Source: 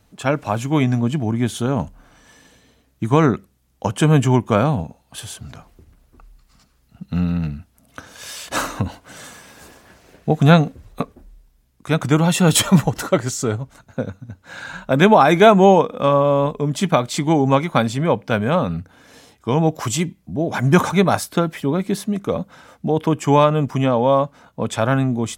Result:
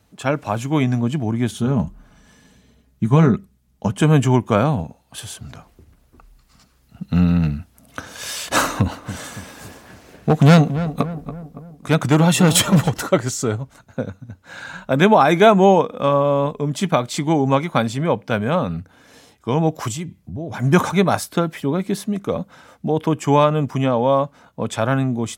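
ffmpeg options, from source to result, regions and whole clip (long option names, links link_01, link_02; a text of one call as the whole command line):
ffmpeg -i in.wav -filter_complex "[0:a]asettb=1/sr,asplit=3[link_01][link_02][link_03];[link_01]atrim=end=1.514[link_04];[link_02]atrim=start=1.51:end=4.02,asetpts=PTS-STARTPTS,afade=type=in:duration=0.004:curve=qsin,afade=type=out:start_time=2.506:duration=0.004:curve=qsin,bass=frequency=250:gain=10,treble=frequency=4000:gain=0,flanger=delay=0.1:depth=9.1:regen=-75:speed=1.6:shape=sinusoidal,aecho=1:1:4.8:0.41,atrim=end_sample=110691[link_05];[link_03]atrim=start=4.016[link_06];[link_04][link_05]acrossfade=duration=0.004:curve1=hsin:curve2=qsin[link_07];[link_07][link_06]acrossfade=duration=0.004:curve1=qsin:curve2=hsin,asettb=1/sr,asplit=3[link_08][link_09][link_10];[link_08]atrim=end=8.634[link_11];[link_09]atrim=start=8.63:end=12.92,asetpts=PTS-STARTPTS,afade=type=in:duration=0.004:curve=qsin,afade=type=out:start_time=4.286:duration=0.004:curve=qsin,asoftclip=type=hard:threshold=-10dB,asplit=2[link_12][link_13];[link_13]adelay=282,lowpass=frequency=1500:poles=1,volume=-11.5dB,asplit=2[link_14][link_15];[link_15]adelay=282,lowpass=frequency=1500:poles=1,volume=0.53,asplit=2[link_16][link_17];[link_17]adelay=282,lowpass=frequency=1500:poles=1,volume=0.53,asplit=2[link_18][link_19];[link_19]adelay=282,lowpass=frequency=1500:poles=1,volume=0.53,asplit=2[link_20][link_21];[link_21]adelay=282,lowpass=frequency=1500:poles=1,volume=0.53,asplit=2[link_22][link_23];[link_23]adelay=282,lowpass=frequency=1500:poles=1,volume=0.53[link_24];[link_12][link_14][link_16][link_18][link_20][link_22][link_24]amix=inputs=7:normalize=0,atrim=end_sample=189189[link_25];[link_10]atrim=start=12.916[link_26];[link_11][link_25]acrossfade=duration=0.004:curve1=hsin:curve2=qsin[link_27];[link_27][link_26]acrossfade=duration=0.004:curve1=qsin:curve2=hsin,asettb=1/sr,asplit=3[link_28][link_29][link_30];[link_28]atrim=end=19.924[link_31];[link_29]atrim=start=19.92:end=20.6,asetpts=PTS-STARTPTS,afade=type=in:duration=0.004:curve=qsin,afade=type=out:start_time=0.676:duration=0.004:curve=qsin,equalizer=frequency=99:width_type=o:width=0.77:gain=13,acompressor=threshold=-30dB:ratio=2:attack=3.2:release=140:knee=1:detection=peak[link_32];[link_30]atrim=start=20.596[link_33];[link_31][link_32]acrossfade=duration=0.004:curve1=hsin:curve2=qsin[link_34];[link_34][link_33]acrossfade=duration=0.004:curve1=qsin:curve2=hsin,highpass=45,dynaudnorm=framelen=360:gausssize=11:maxgain=11.5dB,volume=-1dB" out.wav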